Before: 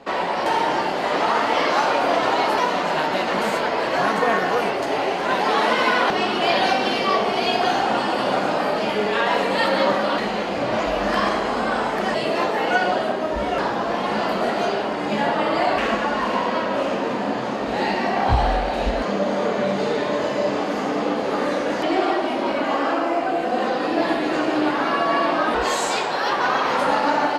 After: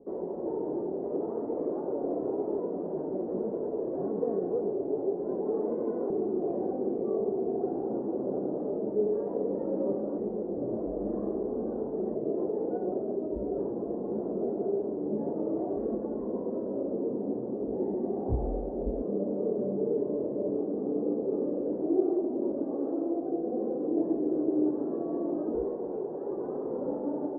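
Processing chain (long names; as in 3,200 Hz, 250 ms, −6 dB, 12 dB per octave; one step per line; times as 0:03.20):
transistor ladder low-pass 460 Hz, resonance 55%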